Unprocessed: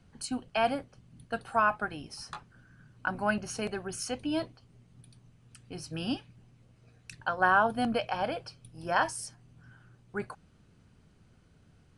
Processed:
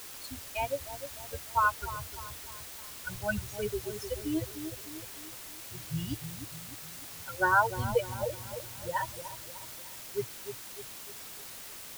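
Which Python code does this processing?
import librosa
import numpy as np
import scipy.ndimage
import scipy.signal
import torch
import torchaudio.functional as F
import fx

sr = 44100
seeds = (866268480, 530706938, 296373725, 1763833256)

y = fx.bin_expand(x, sr, power=3.0)
y = fx.lowpass(y, sr, hz=1600.0, slope=6)
y = fx.peak_eq(y, sr, hz=83.0, db=15.0, octaves=1.5)
y = y + 0.85 * np.pad(y, (int(2.1 * sr / 1000.0), 0))[:len(y)]
y = fx.quant_dither(y, sr, seeds[0], bits=8, dither='triangular')
y = fx.echo_wet_lowpass(y, sr, ms=303, feedback_pct=48, hz=830.0, wet_db=-8.5)
y = y * 10.0 ** (3.0 / 20.0)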